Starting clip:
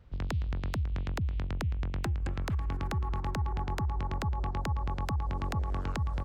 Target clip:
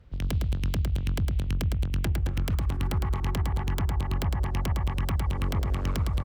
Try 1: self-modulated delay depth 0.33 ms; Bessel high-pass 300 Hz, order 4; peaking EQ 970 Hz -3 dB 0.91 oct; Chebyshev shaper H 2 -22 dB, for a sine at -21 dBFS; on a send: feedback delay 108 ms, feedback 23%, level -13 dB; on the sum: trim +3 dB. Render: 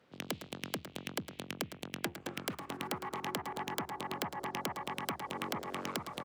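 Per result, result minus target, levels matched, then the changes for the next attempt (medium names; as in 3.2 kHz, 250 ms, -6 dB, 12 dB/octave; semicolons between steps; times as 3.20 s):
echo-to-direct -8.5 dB; 250 Hz band +3.0 dB
change: feedback delay 108 ms, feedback 23%, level -4.5 dB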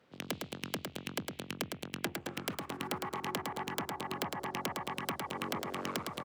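250 Hz band +3.5 dB
remove: Bessel high-pass 300 Hz, order 4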